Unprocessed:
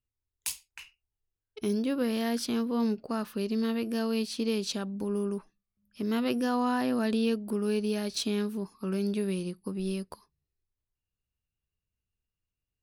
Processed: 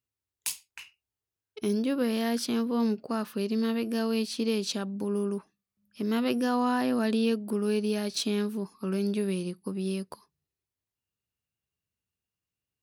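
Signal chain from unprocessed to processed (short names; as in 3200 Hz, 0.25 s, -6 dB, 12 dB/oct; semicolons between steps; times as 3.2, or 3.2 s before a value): HPF 110 Hz; gain +1.5 dB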